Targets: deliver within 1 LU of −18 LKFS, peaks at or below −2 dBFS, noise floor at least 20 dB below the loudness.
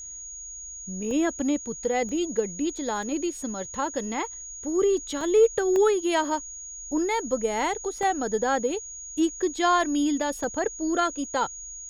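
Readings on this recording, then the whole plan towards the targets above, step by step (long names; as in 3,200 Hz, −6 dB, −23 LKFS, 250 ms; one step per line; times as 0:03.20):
number of dropouts 7; longest dropout 1.1 ms; interfering tone 6,700 Hz; level of the tone −37 dBFS; integrated loudness −26.0 LKFS; sample peak −10.5 dBFS; target loudness −18.0 LKFS
→ repair the gap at 0:01.11/0:02.09/0:03.03/0:05.21/0:05.76/0:08.03/0:10.44, 1.1 ms
notch filter 6,700 Hz, Q 30
level +8 dB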